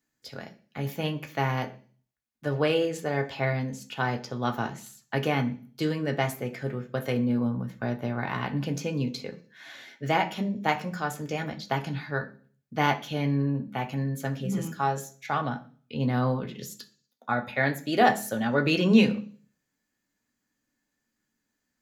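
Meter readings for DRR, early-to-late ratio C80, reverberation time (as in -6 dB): 3.0 dB, 20.0 dB, 0.45 s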